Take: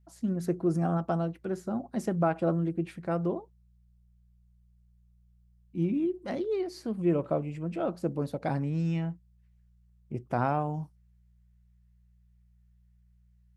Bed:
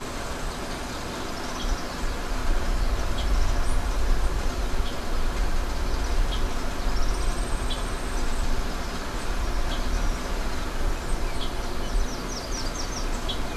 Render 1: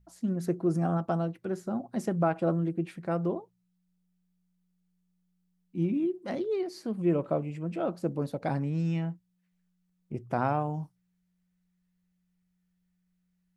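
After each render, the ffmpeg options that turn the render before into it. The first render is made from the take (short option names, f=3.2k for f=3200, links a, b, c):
-af "bandreject=f=60:t=h:w=4,bandreject=f=120:t=h:w=4"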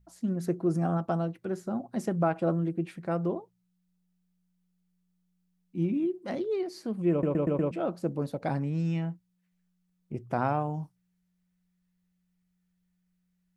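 -filter_complex "[0:a]asplit=6[a][b][c][d][e][f];[a]atrim=end=7.232[g];[b]atrim=start=7.108:end=7.232[h];[c]atrim=start=7.108:end=7.232[i];[d]atrim=start=7.108:end=7.232[j];[e]atrim=start=7.108:end=7.232[k];[f]atrim=start=7.708[l];[g][h]acrossfade=d=0.004:c1=hsin:c2=hsin[m];[m][i]acrossfade=d=0.004:c1=hsin:c2=hsin[n];[n][j]acrossfade=d=0.004:c1=hsin:c2=hsin[o];[o][k]acrossfade=d=0.004:c1=hsin:c2=hsin[p];[p][l]acrossfade=d=0.004:c1=hsin:c2=hsin"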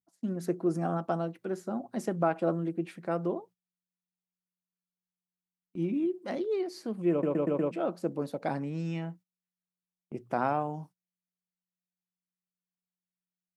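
-af "highpass=210,agate=range=-20dB:threshold=-51dB:ratio=16:detection=peak"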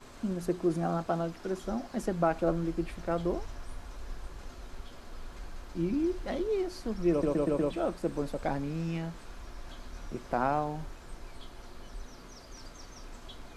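-filter_complex "[1:a]volume=-18dB[a];[0:a][a]amix=inputs=2:normalize=0"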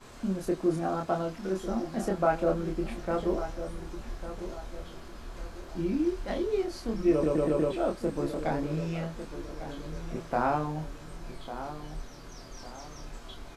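-filter_complex "[0:a]asplit=2[a][b];[b]adelay=26,volume=-2.5dB[c];[a][c]amix=inputs=2:normalize=0,asplit=2[d][e];[e]adelay=1150,lowpass=f=2k:p=1,volume=-11dB,asplit=2[f][g];[g]adelay=1150,lowpass=f=2k:p=1,volume=0.39,asplit=2[h][i];[i]adelay=1150,lowpass=f=2k:p=1,volume=0.39,asplit=2[j][k];[k]adelay=1150,lowpass=f=2k:p=1,volume=0.39[l];[d][f][h][j][l]amix=inputs=5:normalize=0"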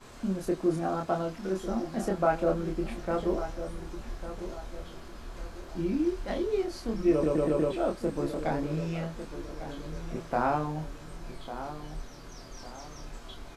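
-af anull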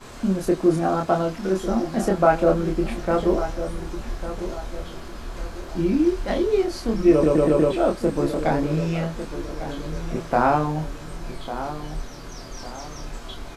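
-af "volume=8.5dB"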